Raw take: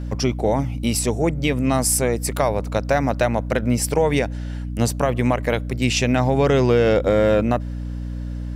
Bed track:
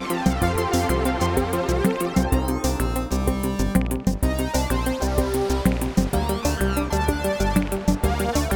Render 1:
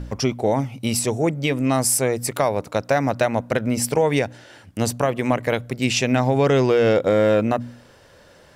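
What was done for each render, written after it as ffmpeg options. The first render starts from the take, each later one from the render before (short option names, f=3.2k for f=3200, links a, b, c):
-af "bandreject=f=60:t=h:w=4,bandreject=f=120:t=h:w=4,bandreject=f=180:t=h:w=4,bandreject=f=240:t=h:w=4,bandreject=f=300:t=h:w=4"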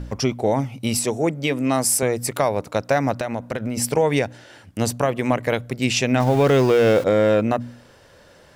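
-filter_complex "[0:a]asettb=1/sr,asplit=3[a][b][c];[a]atrim=end=0.974[d];[b]atrim=start=0.97:end=2.03,asetpts=PTS-STARTPTS,afade=t=in:d=0.004:c=qsin,afade=t=out:st=1.056:d=0.004:c=qsin,highpass=150[e];[c]atrim=start=2.026[f];[d][e]acrossfade=d=0.004:c1=hsin:c2=qsin[g];[g][f]acrossfade=d=0.004:c1=qsin:c2=hsin,asettb=1/sr,asplit=3[h][i][j];[h]atrim=end=3.204[k];[i]atrim=start=3.2:end=3.77,asetpts=PTS-STARTPTS,afade=t=in:d=0.004:c=qsin,afade=t=out:st=0.566:d=0.004:c=qsin,acompressor=threshold=-21dB:ratio=6:attack=3.2:release=140:knee=1:detection=peak[l];[j]atrim=start=3.766[m];[k][l]acrossfade=d=0.004:c1=hsin:c2=qsin[n];[n][m]acrossfade=d=0.004:c1=qsin:c2=hsin,asettb=1/sr,asplit=3[o][p][q];[o]atrim=end=6.204[r];[p]atrim=start=6.2:end=7.04,asetpts=PTS-STARTPTS,afade=t=in:d=0.004:c=qsin,afade=t=out:st=0.836:d=0.004:c=qsin,aeval=exprs='val(0)+0.5*0.0447*sgn(val(0))':c=same[s];[q]atrim=start=7.036[t];[r][s]acrossfade=d=0.004:c1=hsin:c2=qsin[u];[u][t]acrossfade=d=0.004:c1=qsin:c2=hsin"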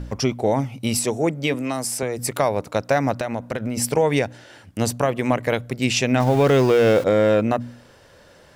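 -filter_complex "[0:a]asettb=1/sr,asplit=3[a][b][c];[a]atrim=end=1.544[d];[b]atrim=start=1.54:end=2.19,asetpts=PTS-STARTPTS,afade=t=in:d=0.004:c=qsin,afade=t=out:st=0.646:d=0.004:c=qsin,acrossover=split=450|5500[e][f][g];[e]acompressor=threshold=-27dB:ratio=4[h];[f]acompressor=threshold=-26dB:ratio=4[i];[g]acompressor=threshold=-29dB:ratio=4[j];[h][i][j]amix=inputs=3:normalize=0[k];[c]atrim=start=2.186[l];[d][k]acrossfade=d=0.004:c1=hsin:c2=qsin[m];[m][l]acrossfade=d=0.004:c1=qsin:c2=hsin"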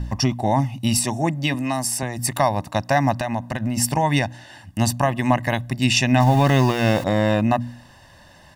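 -af "aecho=1:1:1.1:0.87"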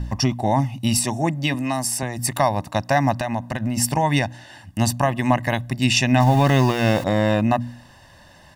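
-af anull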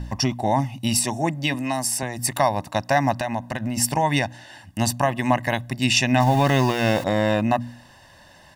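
-af "lowshelf=f=230:g=-5,bandreject=f=1.2k:w=21"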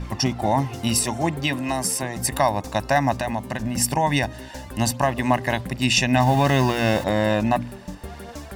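-filter_complex "[1:a]volume=-15dB[a];[0:a][a]amix=inputs=2:normalize=0"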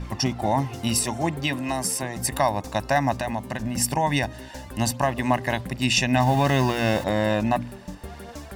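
-af "volume=-2dB"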